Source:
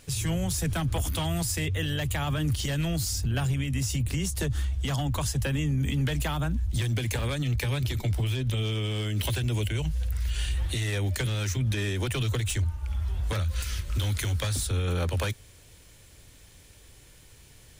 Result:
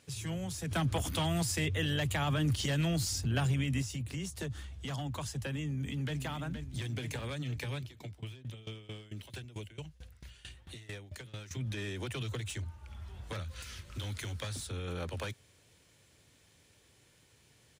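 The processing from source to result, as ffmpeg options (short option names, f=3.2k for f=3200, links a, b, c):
-filter_complex "[0:a]asettb=1/sr,asplit=3[a][b][c];[a]atrim=end=0.714[d];[b]atrim=start=0.71:end=3.82,asetpts=PTS-STARTPTS,afade=t=in:d=0.004:c=qsin,afade=t=out:st=3.106:d=0.004:c=qsin,acontrast=68[e];[c]atrim=start=3.816[f];[d][e]acrossfade=d=0.004:c1=hsin:c2=qsin[g];[g][f]acrossfade=d=0.004:c1=qsin:c2=hsin,asplit=2[h][i];[i]afade=t=in:st=5.62:d=0.01,afade=t=out:st=6.17:d=0.01,aecho=0:1:470|940|1410|1880|2350|2820|3290:0.354813|0.212888|0.127733|0.0766397|0.0459838|0.0275903|0.0165542[j];[h][j]amix=inputs=2:normalize=0,asettb=1/sr,asplit=3[k][l][m];[k]atrim=end=7.784[n];[l]atrim=start=7.78:end=11.51,asetpts=PTS-STARTPTS,afade=t=in:d=0.004:c=qsin,afade=t=out:st=3.726:d=0.004:c=qsin,aeval=exprs='val(0)*pow(10,-20*if(lt(mod(4.5*n/s,1),2*abs(4.5)/1000),1-mod(4.5*n/s,1)/(2*abs(4.5)/1000),(mod(4.5*n/s,1)-2*abs(4.5)/1000)/(1-2*abs(4.5)/1000))/20)':c=same[o];[m]atrim=start=11.506[p];[n][o]acrossfade=d=0.004:c1=hsin:c2=qsin[q];[q][p]acrossfade=d=0.004:c1=qsin:c2=hsin,highpass=110,highshelf=f=11k:g=-11,volume=-8dB"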